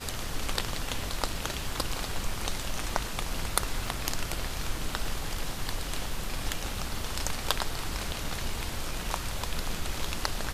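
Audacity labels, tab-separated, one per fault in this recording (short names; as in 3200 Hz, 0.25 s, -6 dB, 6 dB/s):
3.870000	3.870000	gap 2.5 ms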